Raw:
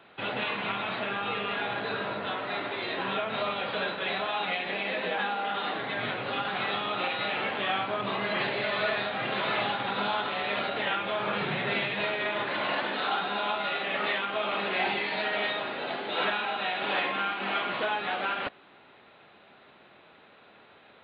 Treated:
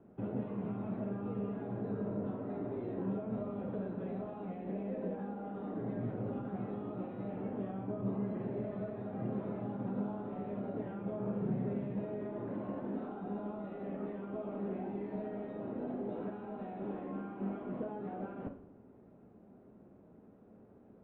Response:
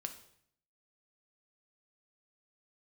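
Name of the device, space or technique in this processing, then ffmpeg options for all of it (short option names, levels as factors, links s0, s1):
television next door: -filter_complex "[0:a]acompressor=threshold=0.0282:ratio=6,lowpass=270[s0];[1:a]atrim=start_sample=2205[s1];[s0][s1]afir=irnorm=-1:irlink=0,volume=2.99"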